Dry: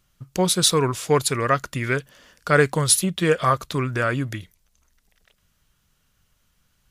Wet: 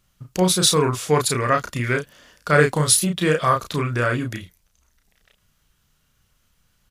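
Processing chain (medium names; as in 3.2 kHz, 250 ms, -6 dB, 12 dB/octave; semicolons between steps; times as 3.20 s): doubling 33 ms -4 dB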